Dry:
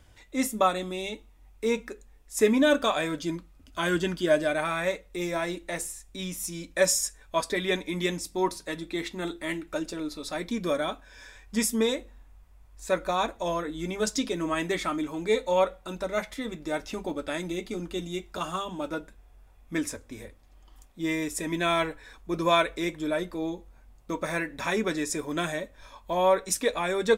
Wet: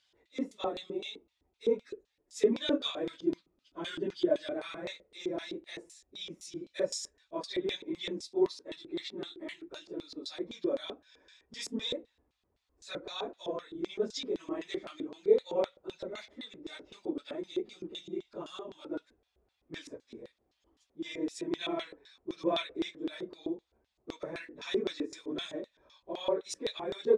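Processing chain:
random phases in long frames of 50 ms
low-pass filter 8,200 Hz 12 dB per octave
auto-filter band-pass square 3.9 Hz 380–4,000 Hz

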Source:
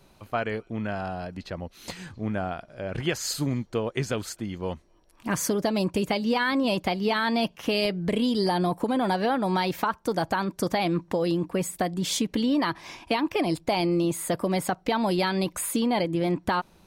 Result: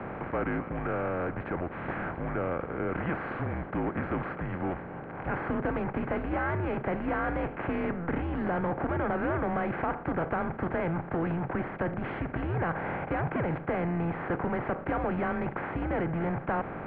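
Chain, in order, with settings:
compressor on every frequency bin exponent 0.4
soft clipping −18 dBFS, distortion −11 dB
single-sideband voice off tune −170 Hz 260–2,200 Hz
level −5 dB

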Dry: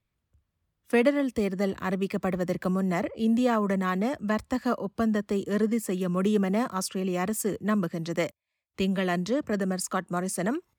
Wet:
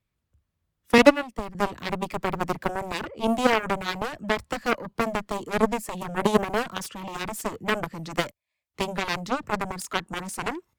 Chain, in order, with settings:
harmonic generator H 3 −23 dB, 7 −15 dB, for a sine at −10 dBFS
0:00.98–0:01.55: multiband upward and downward expander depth 100%
level +7 dB

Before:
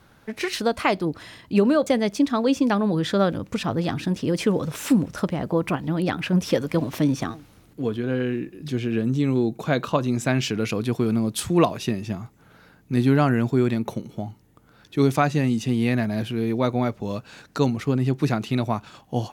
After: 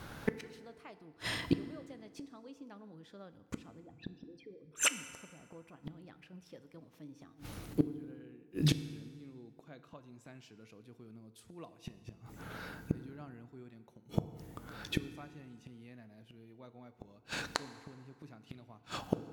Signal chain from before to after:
0:03.80–0:05.00: spectral envelope exaggerated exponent 3
gate with flip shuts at −22 dBFS, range −38 dB
feedback delay network reverb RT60 2 s, low-frequency decay 0.8×, high-frequency decay 0.65×, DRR 11.5 dB
level +6.5 dB

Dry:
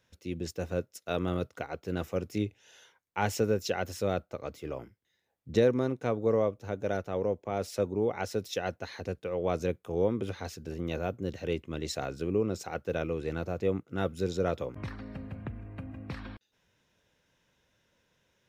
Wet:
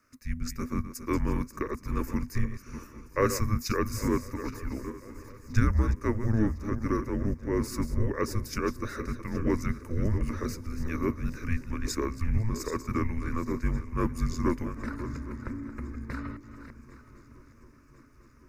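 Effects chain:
feedback delay that plays each chunk backwards 410 ms, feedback 43%, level −11 dB
phaser with its sweep stopped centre 730 Hz, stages 8
feedback echo with a long and a short gap by turns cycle 1,055 ms, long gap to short 3 to 1, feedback 66%, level −23.5 dB
frequency shifter −330 Hz
level +7.5 dB

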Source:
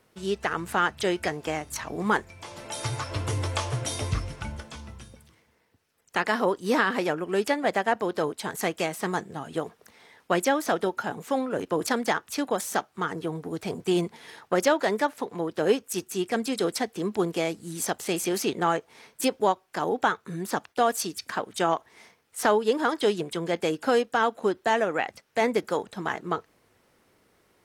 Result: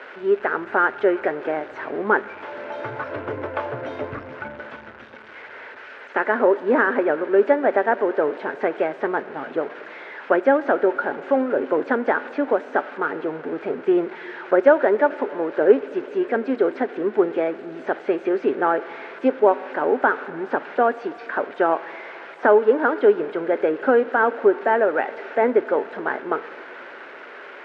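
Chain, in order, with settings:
spike at every zero crossing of −18.5 dBFS
loudspeaker in its box 180–2,200 Hz, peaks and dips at 180 Hz −8 dB, 260 Hz +8 dB, 400 Hz +10 dB, 580 Hz +10 dB, 870 Hz +4 dB, 1,500 Hz +9 dB
on a send: convolution reverb RT60 4.1 s, pre-delay 32 ms, DRR 16.5 dB
on the sum: level −1 dB

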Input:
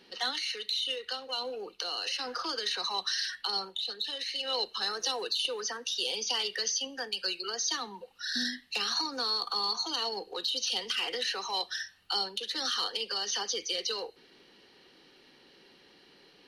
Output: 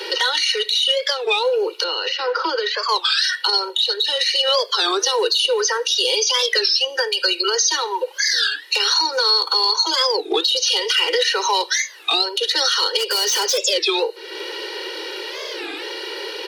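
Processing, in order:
0:12.98–0:13.58: hard clipping −35 dBFS, distortion −19 dB
Chebyshev high-pass filter 330 Hz, order 6
comb filter 2.1 ms, depth 97%
downward compressor 2.5 to 1, threshold −51 dBFS, peak gain reduction 18 dB
0:01.84–0:02.91: high-frequency loss of the air 230 metres
boost into a limiter +34.5 dB
wow of a warped record 33 1/3 rpm, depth 250 cents
level −7 dB

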